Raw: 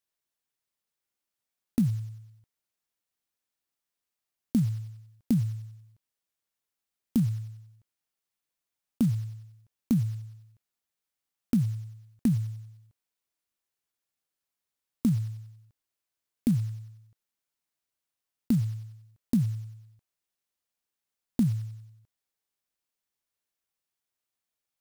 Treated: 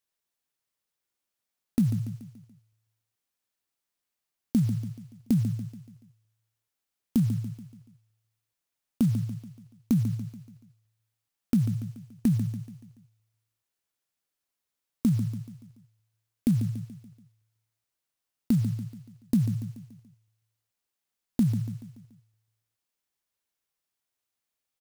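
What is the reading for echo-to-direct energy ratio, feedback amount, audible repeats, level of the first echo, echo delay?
−9.0 dB, 48%, 4, −10.0 dB, 143 ms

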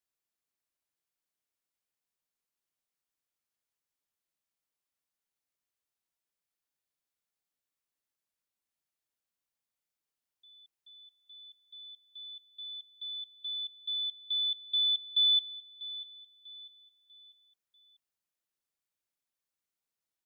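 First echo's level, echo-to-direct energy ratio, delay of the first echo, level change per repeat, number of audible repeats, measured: −16.0 dB, −15.5 dB, 644 ms, −8.0 dB, 3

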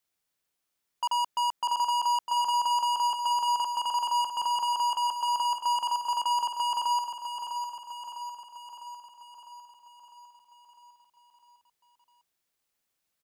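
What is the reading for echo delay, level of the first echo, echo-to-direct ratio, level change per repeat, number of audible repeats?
653 ms, −7.5 dB, −5.5 dB, −4.5 dB, 7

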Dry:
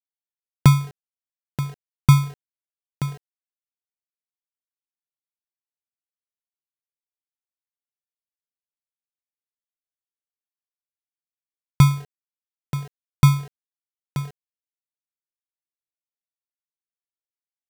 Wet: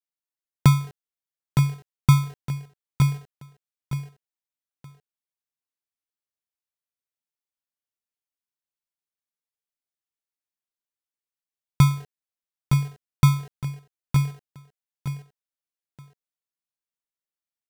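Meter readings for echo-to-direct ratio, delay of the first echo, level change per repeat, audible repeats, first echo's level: −5.5 dB, 913 ms, −11.5 dB, 2, −6.0 dB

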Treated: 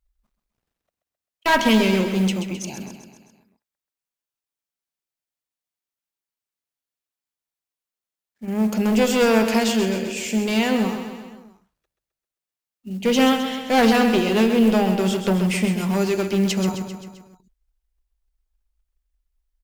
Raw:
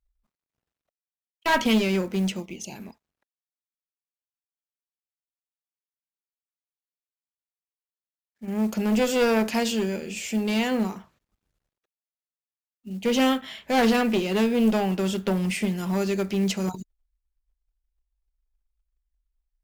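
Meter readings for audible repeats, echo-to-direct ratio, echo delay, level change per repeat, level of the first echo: 5, −6.5 dB, 131 ms, −4.5 dB, −8.5 dB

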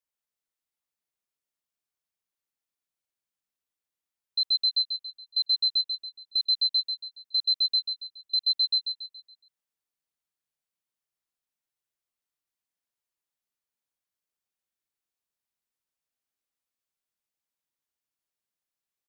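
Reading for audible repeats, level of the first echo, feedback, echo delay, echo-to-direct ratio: 4, −6.5 dB, 41%, 140 ms, −5.5 dB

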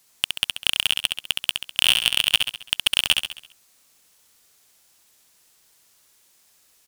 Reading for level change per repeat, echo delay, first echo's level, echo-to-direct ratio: −6.5 dB, 67 ms, −5.0 dB, −4.0 dB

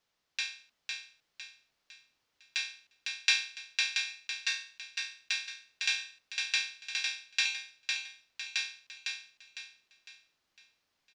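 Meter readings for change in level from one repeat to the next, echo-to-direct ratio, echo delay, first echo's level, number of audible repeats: −8.0 dB, −3.0 dB, 505 ms, −4.0 dB, 4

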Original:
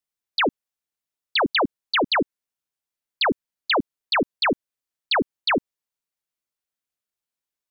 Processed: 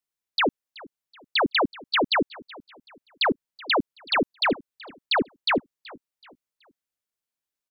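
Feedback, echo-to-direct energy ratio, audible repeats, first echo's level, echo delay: 37%, −21.0 dB, 2, −21.5 dB, 377 ms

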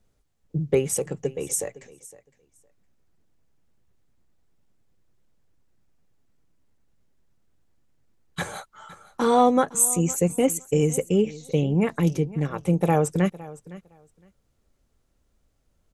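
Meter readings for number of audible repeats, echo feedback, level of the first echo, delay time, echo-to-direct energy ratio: 2, 16%, −19.0 dB, 511 ms, −19.0 dB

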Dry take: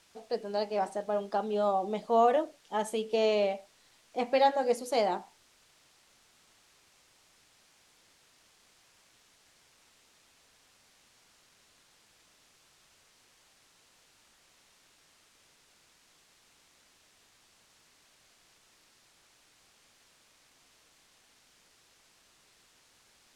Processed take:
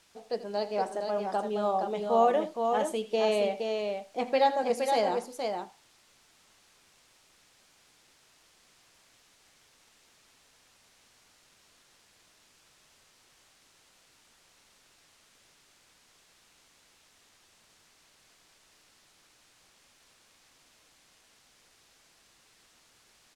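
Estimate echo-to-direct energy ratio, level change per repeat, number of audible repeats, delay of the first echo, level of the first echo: −4.5 dB, repeats not evenly spaced, 2, 83 ms, −15.5 dB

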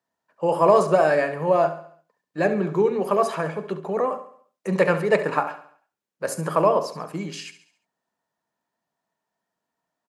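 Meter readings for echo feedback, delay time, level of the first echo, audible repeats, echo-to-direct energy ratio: 47%, 69 ms, −13.0 dB, 4, −12.0 dB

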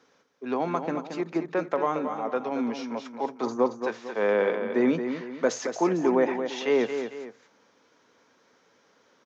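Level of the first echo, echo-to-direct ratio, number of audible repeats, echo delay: −8.0 dB, −7.5 dB, 2, 225 ms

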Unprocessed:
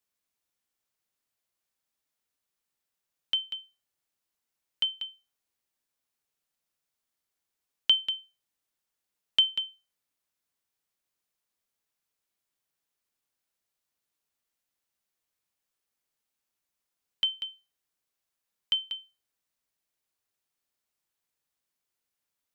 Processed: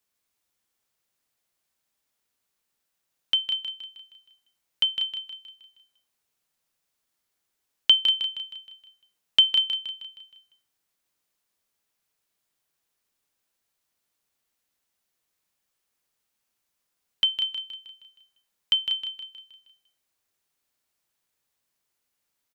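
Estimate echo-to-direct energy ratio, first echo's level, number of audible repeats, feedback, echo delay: −7.0 dB, −8.0 dB, 5, 48%, 157 ms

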